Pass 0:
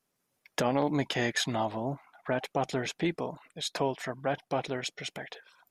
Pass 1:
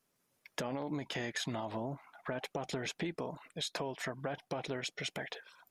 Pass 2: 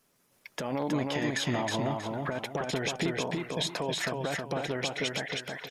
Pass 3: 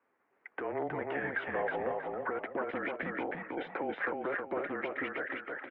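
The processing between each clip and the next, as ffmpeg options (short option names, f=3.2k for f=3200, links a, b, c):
-af "bandreject=f=760:w=21,alimiter=limit=-22.5dB:level=0:latency=1:release=63,acompressor=threshold=-35dB:ratio=6,volume=1dB"
-filter_complex "[0:a]alimiter=level_in=5dB:limit=-24dB:level=0:latency=1:release=255,volume=-5dB,asplit=2[a][b];[b]aecho=0:1:318|636|954|1272:0.708|0.205|0.0595|0.0173[c];[a][c]amix=inputs=2:normalize=0,volume=8.5dB"
-af "crystalizer=i=1.5:c=0,highpass=f=480:t=q:w=0.5412,highpass=f=480:t=q:w=1.307,lowpass=f=2.2k:t=q:w=0.5176,lowpass=f=2.2k:t=q:w=0.7071,lowpass=f=2.2k:t=q:w=1.932,afreqshift=-160"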